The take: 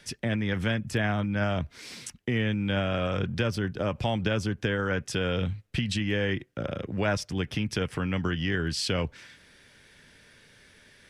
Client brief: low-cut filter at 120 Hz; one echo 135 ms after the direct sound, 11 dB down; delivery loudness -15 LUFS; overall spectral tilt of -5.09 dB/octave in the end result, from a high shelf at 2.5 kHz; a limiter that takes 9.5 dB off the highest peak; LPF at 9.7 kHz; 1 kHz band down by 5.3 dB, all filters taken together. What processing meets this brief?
high-pass 120 Hz; low-pass 9.7 kHz; peaking EQ 1 kHz -7.5 dB; treble shelf 2.5 kHz -4 dB; peak limiter -25.5 dBFS; delay 135 ms -11 dB; trim +20 dB

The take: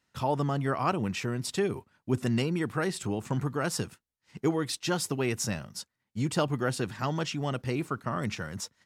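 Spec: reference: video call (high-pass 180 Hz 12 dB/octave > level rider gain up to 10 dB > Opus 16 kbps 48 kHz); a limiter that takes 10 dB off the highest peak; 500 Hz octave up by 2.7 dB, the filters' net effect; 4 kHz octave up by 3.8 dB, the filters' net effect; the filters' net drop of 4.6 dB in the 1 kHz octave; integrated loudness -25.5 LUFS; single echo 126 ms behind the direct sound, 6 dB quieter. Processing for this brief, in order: peaking EQ 500 Hz +5.5 dB; peaking EQ 1 kHz -8.5 dB; peaking EQ 4 kHz +5.5 dB; peak limiter -22.5 dBFS; high-pass 180 Hz 12 dB/octave; delay 126 ms -6 dB; level rider gain up to 10 dB; trim +8.5 dB; Opus 16 kbps 48 kHz

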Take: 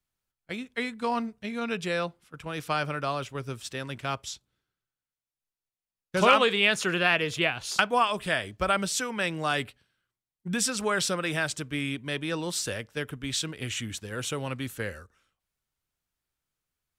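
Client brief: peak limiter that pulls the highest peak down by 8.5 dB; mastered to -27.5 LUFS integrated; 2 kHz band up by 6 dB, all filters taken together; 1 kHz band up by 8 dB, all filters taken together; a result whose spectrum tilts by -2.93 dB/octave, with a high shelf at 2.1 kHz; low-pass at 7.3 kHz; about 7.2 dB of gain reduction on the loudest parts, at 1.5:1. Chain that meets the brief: low-pass 7.3 kHz; peaking EQ 1 kHz +8.5 dB; peaking EQ 2 kHz +3 dB; treble shelf 2.1 kHz +3.5 dB; compression 1.5:1, threshold -30 dBFS; trim +1.5 dB; peak limiter -13.5 dBFS

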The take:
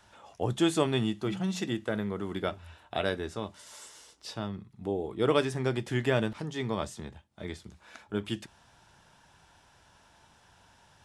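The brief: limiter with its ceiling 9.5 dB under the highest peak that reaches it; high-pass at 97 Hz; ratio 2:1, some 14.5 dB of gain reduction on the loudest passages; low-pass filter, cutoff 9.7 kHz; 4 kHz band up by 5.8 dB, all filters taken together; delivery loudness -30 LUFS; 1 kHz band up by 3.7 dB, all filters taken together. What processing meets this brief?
high-pass 97 Hz; low-pass 9.7 kHz; peaking EQ 1 kHz +4.5 dB; peaking EQ 4 kHz +7 dB; compression 2:1, threshold -46 dBFS; trim +15.5 dB; peak limiter -17 dBFS

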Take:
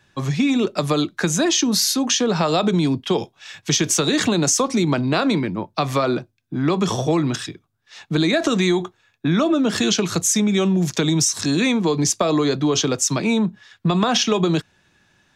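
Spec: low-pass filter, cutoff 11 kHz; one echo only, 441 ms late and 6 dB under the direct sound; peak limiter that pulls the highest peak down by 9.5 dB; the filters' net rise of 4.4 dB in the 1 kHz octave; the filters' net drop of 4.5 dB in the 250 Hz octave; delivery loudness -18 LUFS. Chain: low-pass 11 kHz; peaking EQ 250 Hz -6.5 dB; peaking EQ 1 kHz +6 dB; peak limiter -12.5 dBFS; delay 441 ms -6 dB; trim +4 dB

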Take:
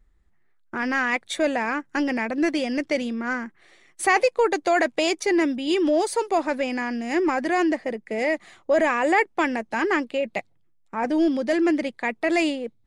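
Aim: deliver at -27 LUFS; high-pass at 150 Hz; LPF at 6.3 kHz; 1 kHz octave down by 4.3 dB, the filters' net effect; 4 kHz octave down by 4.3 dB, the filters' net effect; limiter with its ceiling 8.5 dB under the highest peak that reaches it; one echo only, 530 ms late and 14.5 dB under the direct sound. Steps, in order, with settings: high-pass 150 Hz; low-pass 6.3 kHz; peaking EQ 1 kHz -6 dB; peaking EQ 4 kHz -5 dB; peak limiter -18.5 dBFS; delay 530 ms -14.5 dB; trim +1 dB

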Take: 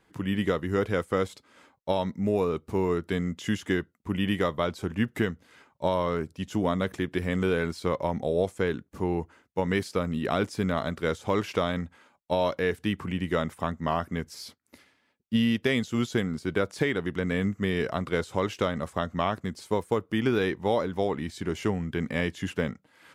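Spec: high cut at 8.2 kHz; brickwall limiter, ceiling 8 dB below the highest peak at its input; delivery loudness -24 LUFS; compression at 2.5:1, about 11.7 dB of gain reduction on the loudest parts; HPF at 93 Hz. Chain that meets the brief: high-pass 93 Hz; low-pass 8.2 kHz; compression 2.5:1, threshold -39 dBFS; trim +17 dB; peak limiter -11 dBFS

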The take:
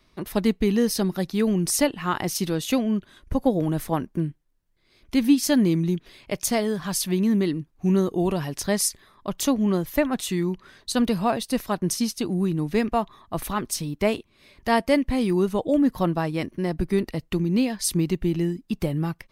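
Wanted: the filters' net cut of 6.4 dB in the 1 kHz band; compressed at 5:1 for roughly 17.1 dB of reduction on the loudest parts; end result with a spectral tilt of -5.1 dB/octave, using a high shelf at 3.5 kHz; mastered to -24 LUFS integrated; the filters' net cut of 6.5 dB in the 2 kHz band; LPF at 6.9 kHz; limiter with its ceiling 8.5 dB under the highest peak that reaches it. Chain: low-pass 6.9 kHz; peaking EQ 1 kHz -8 dB; peaking EQ 2 kHz -7.5 dB; treble shelf 3.5 kHz +6 dB; compression 5:1, threshold -33 dBFS; trim +13.5 dB; peak limiter -14 dBFS

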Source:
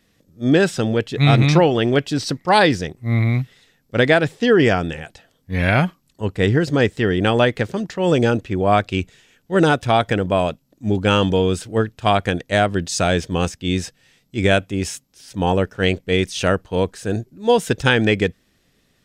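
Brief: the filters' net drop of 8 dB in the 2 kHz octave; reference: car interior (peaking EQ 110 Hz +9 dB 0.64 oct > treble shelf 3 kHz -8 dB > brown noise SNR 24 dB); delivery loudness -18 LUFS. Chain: peaking EQ 110 Hz +9 dB 0.64 oct; peaking EQ 2 kHz -8 dB; treble shelf 3 kHz -8 dB; brown noise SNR 24 dB; trim -0.5 dB

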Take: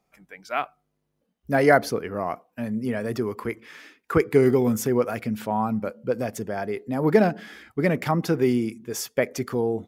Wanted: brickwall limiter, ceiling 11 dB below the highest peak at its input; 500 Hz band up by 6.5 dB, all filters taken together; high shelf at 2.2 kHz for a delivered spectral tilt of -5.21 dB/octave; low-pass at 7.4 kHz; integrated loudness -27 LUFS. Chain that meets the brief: low-pass 7.4 kHz; peaking EQ 500 Hz +7.5 dB; treble shelf 2.2 kHz +9 dB; trim -4.5 dB; peak limiter -15 dBFS

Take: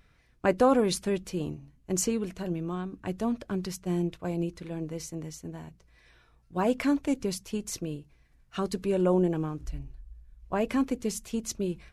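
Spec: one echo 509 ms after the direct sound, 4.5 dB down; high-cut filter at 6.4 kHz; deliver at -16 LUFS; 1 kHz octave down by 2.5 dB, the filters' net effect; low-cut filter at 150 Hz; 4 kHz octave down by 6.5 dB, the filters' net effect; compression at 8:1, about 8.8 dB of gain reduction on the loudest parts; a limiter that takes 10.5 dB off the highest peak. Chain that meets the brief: high-pass 150 Hz; low-pass 6.4 kHz; peaking EQ 1 kHz -3 dB; peaking EQ 4 kHz -7.5 dB; compression 8:1, threshold -27 dBFS; peak limiter -29 dBFS; delay 509 ms -4.5 dB; trim +22 dB

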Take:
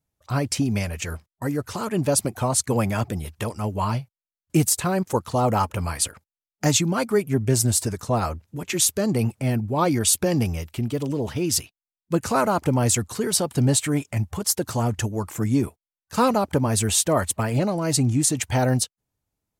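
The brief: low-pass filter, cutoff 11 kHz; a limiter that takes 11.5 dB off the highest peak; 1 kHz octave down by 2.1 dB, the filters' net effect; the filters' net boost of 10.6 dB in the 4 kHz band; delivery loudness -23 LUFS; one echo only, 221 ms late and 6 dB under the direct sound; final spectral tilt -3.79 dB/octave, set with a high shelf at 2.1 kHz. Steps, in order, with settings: low-pass 11 kHz; peaking EQ 1 kHz -5 dB; treble shelf 2.1 kHz +8.5 dB; peaking EQ 4 kHz +5 dB; peak limiter -9.5 dBFS; delay 221 ms -6 dB; trim -1 dB

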